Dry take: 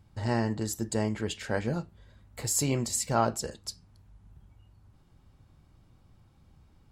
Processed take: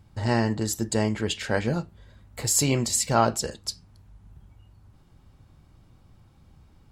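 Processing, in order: dynamic bell 3.4 kHz, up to +4 dB, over -45 dBFS, Q 0.8; trim +4.5 dB

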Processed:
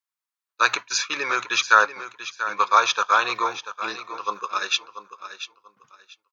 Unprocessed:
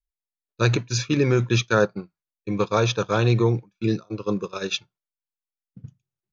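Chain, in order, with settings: resonant high-pass 1.1 kHz, resonance Q 2.5; feedback delay 688 ms, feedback 22%, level -12 dB; trim +3.5 dB

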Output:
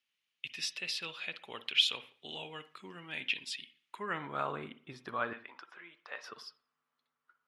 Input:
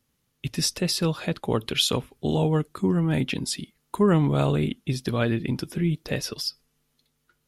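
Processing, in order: 5.33–6.24 s: band-pass 750–6100 Hz; on a send at -13 dB: reverberation, pre-delay 47 ms; on the sum: band-pass sweep 2.7 kHz -> 1.2 kHz, 3.82–4.51 s

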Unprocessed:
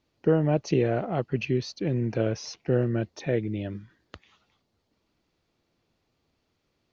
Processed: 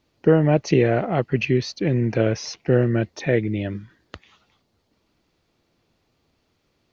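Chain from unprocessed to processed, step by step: dynamic bell 2 kHz, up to +6 dB, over -54 dBFS, Q 2.5; trim +6 dB

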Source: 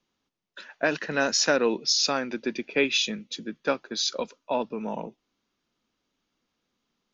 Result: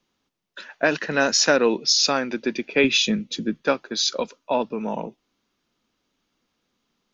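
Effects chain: 2.84–3.62 s: bass shelf 340 Hz +9.5 dB; trim +4.5 dB

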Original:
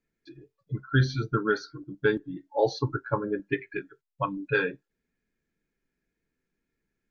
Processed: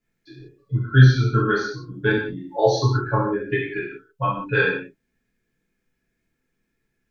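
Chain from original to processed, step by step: 2.46–3.05 s: treble shelf 4.8 kHz +6.5 dB; gated-style reverb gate 210 ms falling, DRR -7.5 dB; trim -1 dB

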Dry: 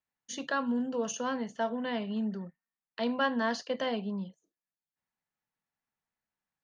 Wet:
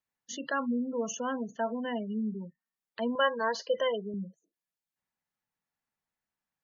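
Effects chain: spectral gate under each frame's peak -20 dB strong; 3.15–4.14 s: comb 2 ms, depth 83%

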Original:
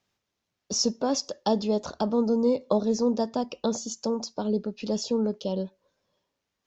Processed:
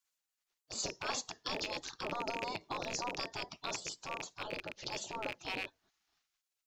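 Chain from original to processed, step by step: rattle on loud lows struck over -39 dBFS, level -29 dBFS; transient shaper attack -7 dB, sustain -1 dB; spectral gate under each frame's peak -15 dB weak; trim +3 dB

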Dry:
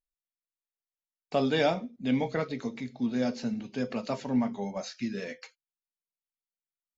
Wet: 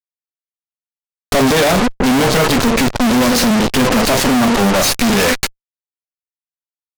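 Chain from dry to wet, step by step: fuzz box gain 43 dB, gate -47 dBFS; Chebyshev shaper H 4 -7 dB, 8 -10 dB, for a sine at -11 dBFS; trim +2 dB

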